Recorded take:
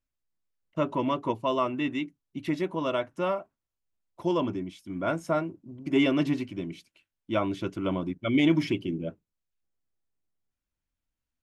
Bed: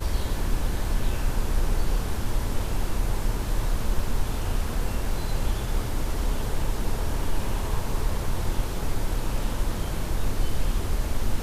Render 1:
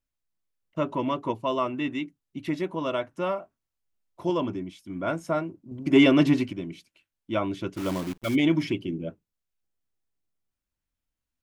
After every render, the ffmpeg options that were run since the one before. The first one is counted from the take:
-filter_complex "[0:a]asettb=1/sr,asplit=3[a][b][c];[a]atrim=end=3.404[d];[b]atrim=start=3.4:end=4.3,asetpts=PTS-STARTPTS,afade=t=in:d=0.004:c=qsin,afade=t=out:st=0.896:d=0.004:c=qsin,asplit=2[e][f];[f]adelay=22,volume=-6.5dB[g];[e][g]amix=inputs=2:normalize=0,atrim=end_sample=39690[h];[c]atrim=start=4.296[i];[d][h]acrossfade=d=0.004:c1=hsin:c2=qsin[j];[j][i]acrossfade=d=0.004:c1=qsin:c2=hsin,asettb=1/sr,asplit=3[k][l][m];[k]atrim=end=5.714[n];[l]atrim=start=5.71:end=6.53,asetpts=PTS-STARTPTS,afade=t=in:d=0.004:c=qsin,afade=t=out:st=0.816:d=0.004:c=qsin,acontrast=59[o];[m]atrim=start=6.526[p];[n][o]acrossfade=d=0.004:c1=hsin:c2=qsin[q];[q][p]acrossfade=d=0.004:c1=qsin:c2=hsin,asplit=3[r][s][t];[r]afade=t=out:st=7.76:d=0.02[u];[s]acrusher=bits=7:dc=4:mix=0:aa=0.000001,afade=t=in:st=7.76:d=0.02,afade=t=out:st=8.34:d=0.02[v];[t]afade=t=in:st=8.34:d=0.02[w];[u][v][w]amix=inputs=3:normalize=0"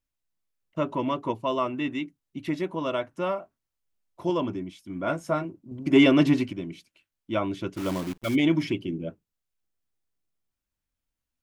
-filter_complex "[0:a]asettb=1/sr,asplit=3[a][b][c];[a]atrim=end=5.034[d];[b]atrim=start=5.03:end=5.45,asetpts=PTS-STARTPTS,afade=t=in:d=0.004:c=qsin,afade=t=out:st=0.416:d=0.004:c=qsin,asplit=2[e][f];[f]adelay=14,volume=-7dB[g];[e][g]amix=inputs=2:normalize=0,atrim=end_sample=18522[h];[c]atrim=start=5.446[i];[d][h]acrossfade=d=0.004:c1=hsin:c2=qsin[j];[j][i]acrossfade=d=0.004:c1=qsin:c2=hsin"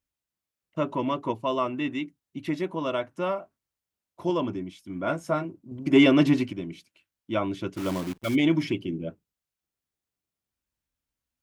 -af "highpass=42"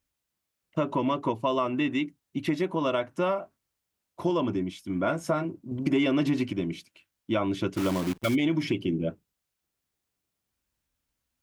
-filter_complex "[0:a]asplit=2[a][b];[b]alimiter=limit=-17dB:level=0:latency=1:release=38,volume=-1dB[c];[a][c]amix=inputs=2:normalize=0,acompressor=threshold=-23dB:ratio=4"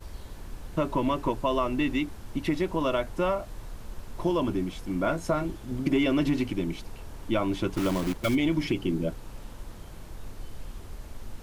-filter_complex "[1:a]volume=-15dB[a];[0:a][a]amix=inputs=2:normalize=0"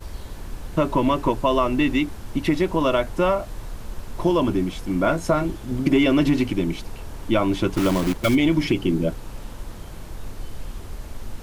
-af "volume=6.5dB"

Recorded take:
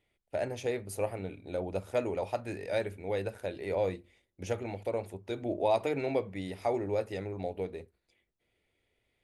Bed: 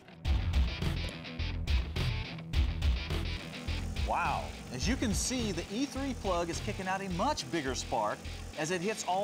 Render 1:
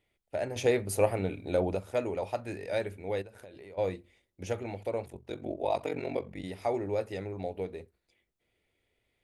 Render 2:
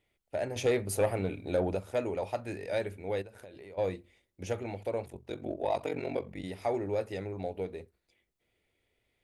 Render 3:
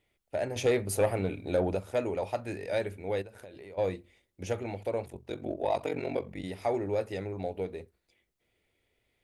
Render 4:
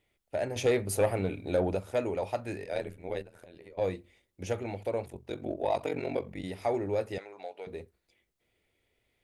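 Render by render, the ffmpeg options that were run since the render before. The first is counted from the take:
-filter_complex "[0:a]asplit=3[a][b][c];[a]afade=t=out:st=3.21:d=0.02[d];[b]acompressor=threshold=-45dB:ratio=8:attack=3.2:release=140:knee=1:detection=peak,afade=t=in:st=3.21:d=0.02,afade=t=out:st=3.77:d=0.02[e];[c]afade=t=in:st=3.77:d=0.02[f];[d][e][f]amix=inputs=3:normalize=0,asplit=3[g][h][i];[g]afade=t=out:st=5.05:d=0.02[j];[h]aeval=exprs='val(0)*sin(2*PI*23*n/s)':c=same,afade=t=in:st=5.05:d=0.02,afade=t=out:st=6.42:d=0.02[k];[i]afade=t=in:st=6.42:d=0.02[l];[j][k][l]amix=inputs=3:normalize=0,asplit=3[m][n][o];[m]atrim=end=0.562[p];[n]atrim=start=0.558:end=1.752,asetpts=PTS-STARTPTS,volume=7dB[q];[o]atrim=start=1.748[r];[p][q]acrossfade=d=0.004:c1=hsin:c2=hsin[s];[s][r]acrossfade=d=0.004:c1=hsin:c2=hsin"
-af "asoftclip=type=tanh:threshold=-18dB"
-af "volume=1.5dB"
-filter_complex "[0:a]asplit=3[a][b][c];[a]afade=t=out:st=2.63:d=0.02[d];[b]tremolo=f=83:d=0.889,afade=t=in:st=2.63:d=0.02,afade=t=out:st=3.8:d=0.02[e];[c]afade=t=in:st=3.8:d=0.02[f];[d][e][f]amix=inputs=3:normalize=0,asettb=1/sr,asplit=3[g][h][i];[g]atrim=end=7.184[j];[h]atrim=start=7.18:end=7.67,asetpts=PTS-STARTPTS,afade=t=in:d=0.004:c=qsin,afade=t=out:st=0.486:d=0.004:c=qsin,highpass=750,lowpass=7.7k[k];[i]atrim=start=7.666[l];[j][k]acrossfade=d=0.004:c1=hsin:c2=qsin[m];[m][l]acrossfade=d=0.004:c1=qsin:c2=hsin"

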